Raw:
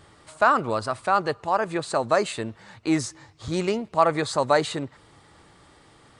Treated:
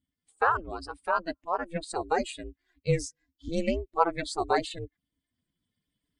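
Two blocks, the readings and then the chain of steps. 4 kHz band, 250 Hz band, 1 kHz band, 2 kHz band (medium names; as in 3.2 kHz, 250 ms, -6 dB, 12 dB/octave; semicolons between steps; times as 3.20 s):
-6.5 dB, -7.0 dB, -5.5 dB, -5.5 dB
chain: expander on every frequency bin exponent 2; recorder AGC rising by 5.2 dB/s; ring modulator 170 Hz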